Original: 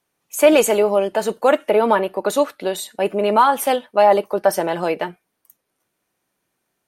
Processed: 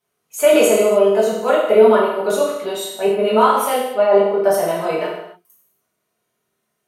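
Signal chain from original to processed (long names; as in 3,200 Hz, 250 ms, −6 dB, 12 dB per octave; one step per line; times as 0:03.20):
0:03.76–0:04.42: low-pass filter 2,000 Hz 6 dB per octave
convolution reverb, pre-delay 4 ms, DRR −9 dB
level −8.5 dB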